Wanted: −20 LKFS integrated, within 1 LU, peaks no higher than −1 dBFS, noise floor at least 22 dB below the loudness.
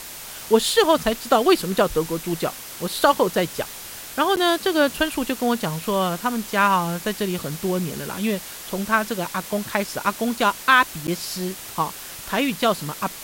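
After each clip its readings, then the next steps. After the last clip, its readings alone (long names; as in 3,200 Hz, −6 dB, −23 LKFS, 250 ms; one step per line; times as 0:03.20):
number of dropouts 2; longest dropout 9.2 ms; background noise floor −37 dBFS; target noise floor −44 dBFS; integrated loudness −22.0 LKFS; sample peak −4.0 dBFS; target loudness −20.0 LKFS
→ repair the gap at 0:04.36/0:11.07, 9.2 ms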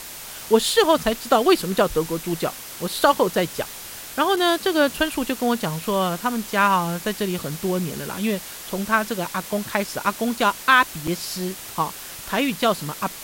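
number of dropouts 0; background noise floor −37 dBFS; target noise floor −44 dBFS
→ broadband denoise 7 dB, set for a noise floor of −37 dBFS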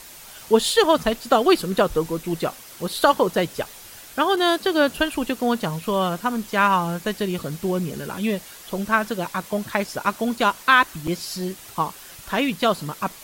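background noise floor −43 dBFS; target noise floor −45 dBFS
→ broadband denoise 6 dB, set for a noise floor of −43 dBFS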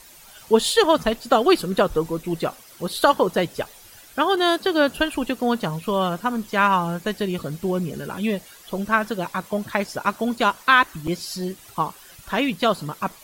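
background noise floor −47 dBFS; integrated loudness −22.0 LKFS; sample peak −4.0 dBFS; target loudness −20.0 LKFS
→ level +2 dB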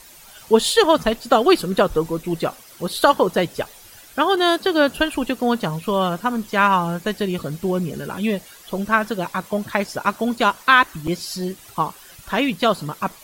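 integrated loudness −20.0 LKFS; sample peak −2.0 dBFS; background noise floor −45 dBFS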